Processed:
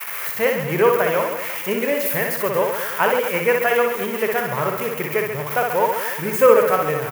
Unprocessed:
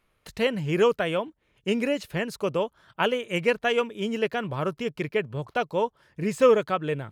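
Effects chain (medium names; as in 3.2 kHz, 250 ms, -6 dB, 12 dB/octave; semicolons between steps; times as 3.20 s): zero-crossing glitches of -15.5 dBFS; graphic EQ 125/250/500/1000/2000/4000/8000 Hz +6/-3/+5/+7/+8/-11/-10 dB; expander -29 dBFS; bass shelf 95 Hz -8.5 dB; on a send: reverse bouncing-ball echo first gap 60 ms, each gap 1.25×, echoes 5; on the sum: trim -1 dB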